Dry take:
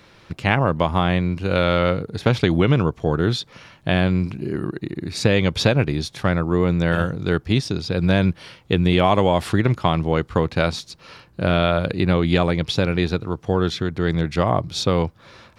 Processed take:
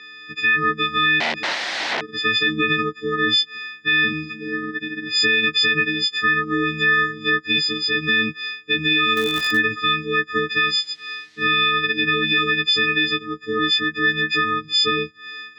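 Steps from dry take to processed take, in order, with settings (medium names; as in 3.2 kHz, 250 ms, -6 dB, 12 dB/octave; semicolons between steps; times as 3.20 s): partials quantised in pitch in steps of 6 st; FFT band-reject 510–1100 Hz; 1.20–2.11 s: integer overflow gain 19.5 dB; 10.55–11.46 s: added noise violet -39 dBFS; cabinet simulation 390–4400 Hz, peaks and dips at 440 Hz -6 dB, 670 Hz +3 dB, 1.2 kHz -5 dB, 1.9 kHz +6 dB, 2.9 kHz -3 dB; 9.15–9.59 s: crackle 410 per s -> 120 per s -22 dBFS; peak limiter -13.5 dBFS, peak gain reduction 11.5 dB; trim +4 dB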